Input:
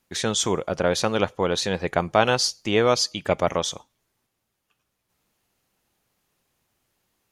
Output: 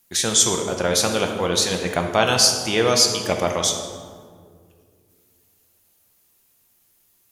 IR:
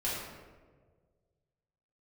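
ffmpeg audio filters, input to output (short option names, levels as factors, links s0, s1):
-filter_complex "[0:a]aemphasis=mode=production:type=75fm,asplit=2[s0][s1];[1:a]atrim=start_sample=2205,asetrate=28665,aresample=44100[s2];[s1][s2]afir=irnorm=-1:irlink=0,volume=0.335[s3];[s0][s3]amix=inputs=2:normalize=0,volume=0.708"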